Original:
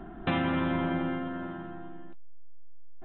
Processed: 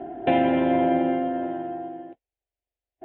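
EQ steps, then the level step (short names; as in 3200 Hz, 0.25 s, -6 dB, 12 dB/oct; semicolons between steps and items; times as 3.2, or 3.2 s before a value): speaker cabinet 210–2900 Hz, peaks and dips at 240 Hz +6 dB, 700 Hz +8 dB, 1100 Hz +5 dB; low shelf 430 Hz +8 dB; fixed phaser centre 490 Hz, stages 4; +7.0 dB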